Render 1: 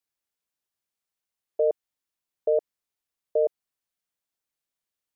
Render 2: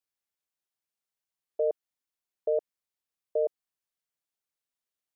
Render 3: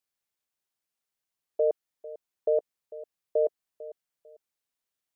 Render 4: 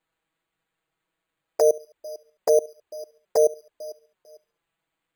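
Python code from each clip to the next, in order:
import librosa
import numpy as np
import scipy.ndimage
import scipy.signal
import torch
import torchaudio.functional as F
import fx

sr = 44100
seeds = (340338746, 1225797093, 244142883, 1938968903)

y1 = fx.low_shelf(x, sr, hz=190.0, db=-3.0)
y1 = y1 * librosa.db_to_amplitude(-4.0)
y2 = fx.echo_feedback(y1, sr, ms=448, feedback_pct=26, wet_db=-17.0)
y2 = y2 * librosa.db_to_amplitude(2.5)
y3 = fx.echo_feedback(y2, sr, ms=70, feedback_pct=46, wet_db=-22)
y3 = np.repeat(y3[::8], 8)[:len(y3)]
y3 = fx.env_flanger(y3, sr, rest_ms=6.2, full_db=-23.5)
y3 = y3 * librosa.db_to_amplitude(8.0)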